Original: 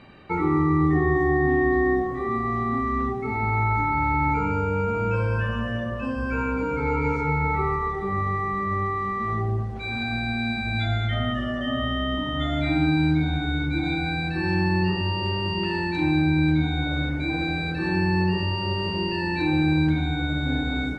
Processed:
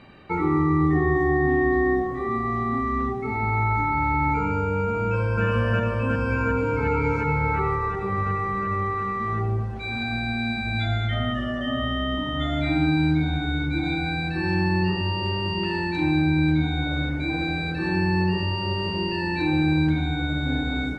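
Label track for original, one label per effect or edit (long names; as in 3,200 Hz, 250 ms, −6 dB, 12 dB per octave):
5.010000	5.430000	delay throw 360 ms, feedback 80%, level −0.5 dB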